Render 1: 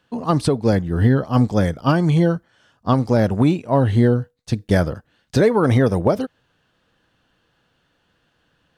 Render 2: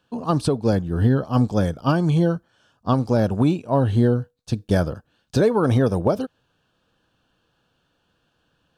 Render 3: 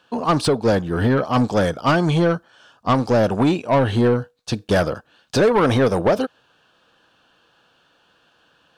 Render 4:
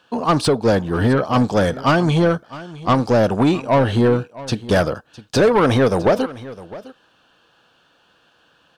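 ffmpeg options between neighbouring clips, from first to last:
ffmpeg -i in.wav -af "equalizer=frequency=2000:width_type=o:width=0.21:gain=-15,volume=-2.5dB" out.wav
ffmpeg -i in.wav -filter_complex "[0:a]asplit=2[link_01][link_02];[link_02]highpass=frequency=720:poles=1,volume=18dB,asoftclip=type=tanh:threshold=-8dB[link_03];[link_01][link_03]amix=inputs=2:normalize=0,lowpass=frequency=4300:poles=1,volume=-6dB" out.wav
ffmpeg -i in.wav -af "aecho=1:1:658:0.126,volume=1.5dB" out.wav

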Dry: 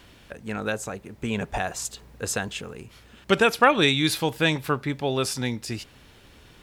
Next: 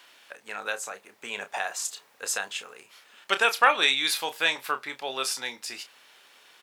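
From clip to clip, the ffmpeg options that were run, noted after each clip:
ffmpeg -i in.wav -filter_complex "[0:a]highpass=800,asplit=2[link_01][link_02];[link_02]adelay=30,volume=-10dB[link_03];[link_01][link_03]amix=inputs=2:normalize=0" out.wav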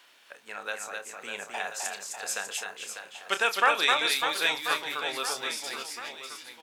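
ffmpeg -i in.wav -af "aecho=1:1:260|598|1037|1609|2351:0.631|0.398|0.251|0.158|0.1,volume=-3.5dB" out.wav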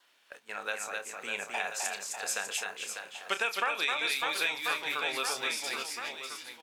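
ffmpeg -i in.wav -af "agate=range=-8dB:threshold=-49dB:ratio=16:detection=peak,adynamicequalizer=threshold=0.00501:dfrequency=2400:dqfactor=6.1:tfrequency=2400:tqfactor=6.1:attack=5:release=100:ratio=0.375:range=3.5:mode=boostabove:tftype=bell,acompressor=threshold=-27dB:ratio=6" out.wav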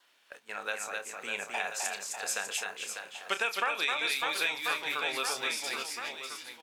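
ffmpeg -i in.wav -af anull out.wav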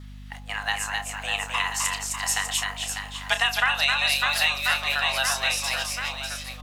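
ffmpeg -i in.wav -af "bandreject=frequency=51.44:width_type=h:width=4,bandreject=frequency=102.88:width_type=h:width=4,bandreject=frequency=154.32:width_type=h:width=4,bandreject=frequency=205.76:width_type=h:width=4,bandreject=frequency=257.2:width_type=h:width=4,bandreject=frequency=308.64:width_type=h:width=4,bandreject=frequency=360.08:width_type=h:width=4,bandreject=frequency=411.52:width_type=h:width=4,bandreject=frequency=462.96:width_type=h:width=4,bandreject=frequency=514.4:width_type=h:width=4,bandreject=frequency=565.84:width_type=h:width=4,bandreject=frequency=617.28:width_type=h:width=4,bandreject=frequency=668.72:width_type=h:width=4,bandreject=frequency=720.16:width_type=h:width=4,bandreject=frequency=771.6:width_type=h:width=4,bandreject=frequency=823.04:width_type=h:width=4,afreqshift=270,aeval=exprs='val(0)+0.00398*(sin(2*PI*50*n/s)+sin(2*PI*2*50*n/s)/2+sin(2*PI*3*50*n/s)/3+sin(2*PI*4*50*n/s)/4+sin(2*PI*5*50*n/s)/5)':channel_layout=same,volume=8dB" out.wav

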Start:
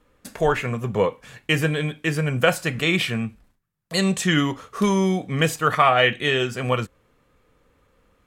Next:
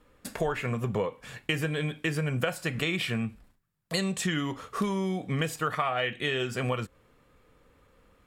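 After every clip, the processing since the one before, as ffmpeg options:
ffmpeg -i in.wav -af "bandreject=frequency=6200:width=16,acompressor=threshold=-26dB:ratio=6" out.wav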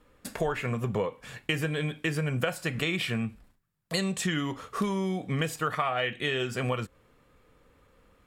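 ffmpeg -i in.wav -af anull out.wav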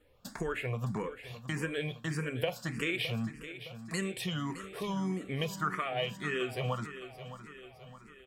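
ffmpeg -i in.wav -filter_complex "[0:a]asplit=2[link_01][link_02];[link_02]aecho=0:1:614|1228|1842|2456|3070:0.237|0.123|0.0641|0.0333|0.0173[link_03];[link_01][link_03]amix=inputs=2:normalize=0,asplit=2[link_04][link_05];[link_05]afreqshift=1.7[link_06];[link_04][link_06]amix=inputs=2:normalize=1,volume=-2dB" out.wav

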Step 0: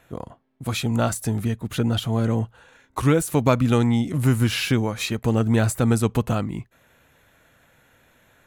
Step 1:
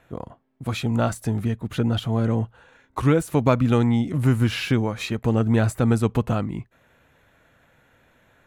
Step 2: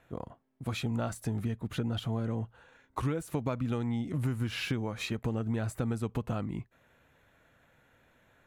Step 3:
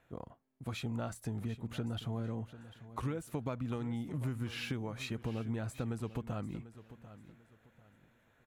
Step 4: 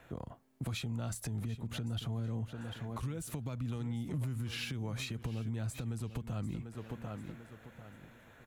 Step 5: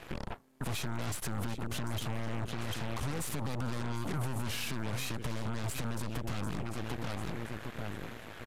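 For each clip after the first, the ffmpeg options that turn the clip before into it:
ffmpeg -i in.wav -af "highshelf=frequency=4600:gain=-10" out.wav
ffmpeg -i in.wav -af "acompressor=threshold=-22dB:ratio=6,volume=-6dB" out.wav
ffmpeg -i in.wav -af "aecho=1:1:744|1488|2232:0.178|0.0516|0.015,volume=-5.5dB" out.wav
ffmpeg -i in.wav -filter_complex "[0:a]acrossover=split=180|3000[link_01][link_02][link_03];[link_02]acompressor=threshold=-49dB:ratio=3[link_04];[link_01][link_04][link_03]amix=inputs=3:normalize=0,alimiter=level_in=16.5dB:limit=-24dB:level=0:latency=1:release=295,volume=-16.5dB,volume=11dB" out.wav
ffmpeg -i in.wav -af "alimiter=level_in=13dB:limit=-24dB:level=0:latency=1:release=100,volume=-13dB,aeval=exprs='0.0141*(cos(1*acos(clip(val(0)/0.0141,-1,1)))-cos(1*PI/2))+0.00501*(cos(8*acos(clip(val(0)/0.0141,-1,1)))-cos(8*PI/2))':channel_layout=same,aresample=32000,aresample=44100,volume=7dB" out.wav

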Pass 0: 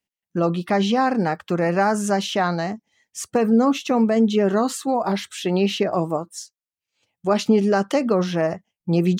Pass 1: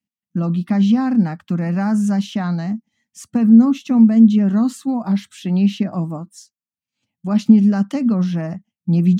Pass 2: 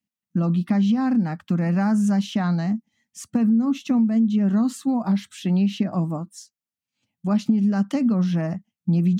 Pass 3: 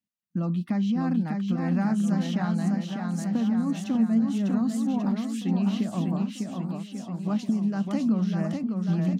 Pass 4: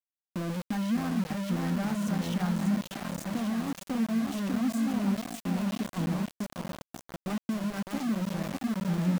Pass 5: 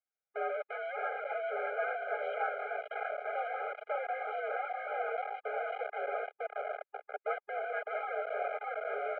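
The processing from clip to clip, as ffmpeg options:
ffmpeg -i in.wav -af "highpass=88,lowshelf=frequency=310:width_type=q:width=3:gain=9,volume=-6.5dB" out.wav
ffmpeg -i in.wav -filter_complex "[0:a]asplit=2[link_01][link_02];[link_02]alimiter=limit=-9.5dB:level=0:latency=1:release=86,volume=-2dB[link_03];[link_01][link_03]amix=inputs=2:normalize=0,acompressor=threshold=-11dB:ratio=6,volume=-5.5dB" out.wav
ffmpeg -i in.wav -af "aecho=1:1:600|1140|1626|2063|2457:0.631|0.398|0.251|0.158|0.1,volume=-6dB" out.wav
ffmpeg -i in.wav -af "flanger=delay=1.6:depth=5.4:regen=69:speed=0.26:shape=triangular,aeval=exprs='val(0)*gte(abs(val(0)),0.0237)':channel_layout=same" out.wav
ffmpeg -i in.wav -af "highpass=frequency=340:width_type=q:width=0.5412,highpass=frequency=340:width_type=q:width=1.307,lowpass=frequency=2200:width_type=q:width=0.5176,lowpass=frequency=2200:width_type=q:width=0.7071,lowpass=frequency=2200:width_type=q:width=1.932,afreqshift=72,afftfilt=real='re*eq(mod(floor(b*sr/1024/410),2),1)':imag='im*eq(mod(floor(b*sr/1024/410),2),1)':win_size=1024:overlap=0.75,volume=7dB" out.wav

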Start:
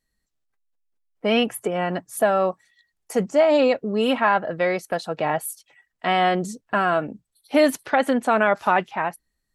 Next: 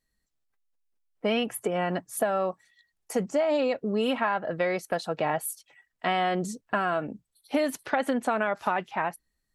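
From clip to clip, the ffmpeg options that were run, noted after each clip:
ffmpeg -i in.wav -af "acompressor=threshold=-20dB:ratio=6,volume=-2dB" out.wav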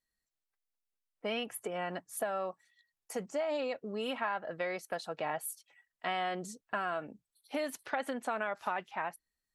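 ffmpeg -i in.wav -af "lowshelf=frequency=390:gain=-8,volume=-6.5dB" out.wav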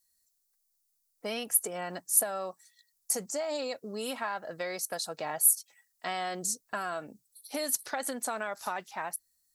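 ffmpeg -i in.wav -af "aexciter=amount=5.9:drive=5.6:freq=4200" out.wav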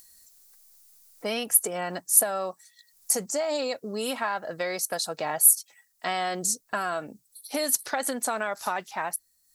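ffmpeg -i in.wav -af "acompressor=mode=upward:threshold=-48dB:ratio=2.5,volume=5.5dB" out.wav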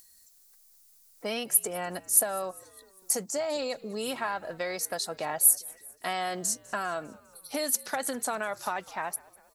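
ffmpeg -i in.wav -filter_complex "[0:a]asplit=5[link_01][link_02][link_03][link_04][link_05];[link_02]adelay=200,afreqshift=-66,volume=-23dB[link_06];[link_03]adelay=400,afreqshift=-132,volume=-27.7dB[link_07];[link_04]adelay=600,afreqshift=-198,volume=-32.5dB[link_08];[link_05]adelay=800,afreqshift=-264,volume=-37.2dB[link_09];[link_01][link_06][link_07][link_08][link_09]amix=inputs=5:normalize=0,volume=-3dB" out.wav

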